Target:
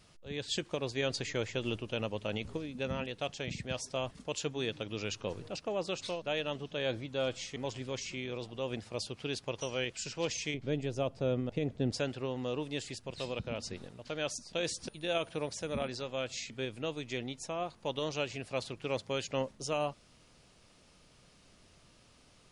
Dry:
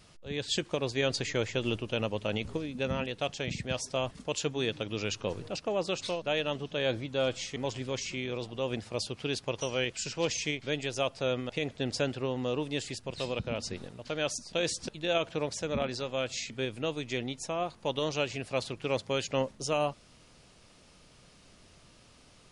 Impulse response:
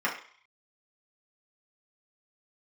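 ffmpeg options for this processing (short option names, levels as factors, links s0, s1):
-filter_complex "[0:a]asettb=1/sr,asplit=3[s0][s1][s2];[s0]atrim=end=10.544[s3];[s1]atrim=start=10.54:end=11.92,asetpts=PTS-STARTPTS,afade=t=in:d=0.004:c=qsin,afade=t=out:st=1.376:d=0.004:c=qsin,tiltshelf=f=700:g=8[s4];[s2]atrim=start=11.916[s5];[s3][s4]acrossfade=d=0.004:c1=hsin:c2=qsin[s6];[s6][s5]acrossfade=d=0.004:c1=qsin:c2=hsin,asettb=1/sr,asplit=3[s7][s8][s9];[s7]atrim=end=14.644[s10];[s8]atrim=start=14.64:end=15.88,asetpts=PTS-STARTPTS,afade=t=in:d=0.004:c=qsin,afade=t=out:st=1.236:d=0.004:c=qsin,aeval=exprs='val(0)+0.001*sin(2*PI*9600*n/s)':c=same[s11];[s9]atrim=start=15.876[s12];[s10][s11]acrossfade=d=0.004:c1=hsin:c2=qsin[s13];[s13][s12]acrossfade=d=0.004:c1=qsin:c2=hsin,volume=0.631"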